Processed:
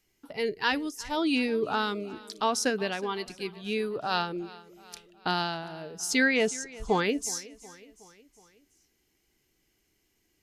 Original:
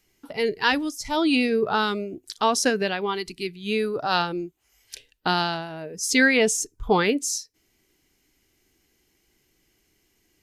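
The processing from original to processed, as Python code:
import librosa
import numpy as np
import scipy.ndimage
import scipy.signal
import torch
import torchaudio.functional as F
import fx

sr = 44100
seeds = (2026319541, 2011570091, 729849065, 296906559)

p1 = fx.lowpass(x, sr, hz=6000.0, slope=12, at=(6.23, 6.9))
p2 = p1 + fx.echo_feedback(p1, sr, ms=368, feedback_pct=55, wet_db=-20, dry=0)
y = p2 * librosa.db_to_amplitude(-5.5)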